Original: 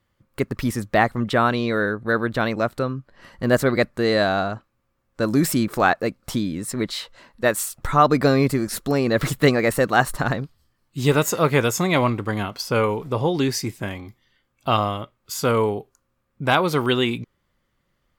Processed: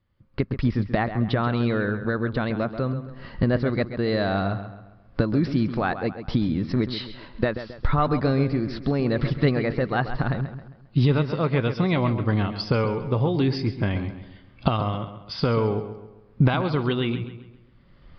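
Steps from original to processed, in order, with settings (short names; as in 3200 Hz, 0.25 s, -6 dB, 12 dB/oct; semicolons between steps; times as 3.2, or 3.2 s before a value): recorder AGC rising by 20 dB/s; low shelf 250 Hz +10 dB; on a send: darkening echo 0.134 s, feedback 43%, low-pass 4300 Hz, level -10.5 dB; on the sum: downsampling 11025 Hz; gain -9 dB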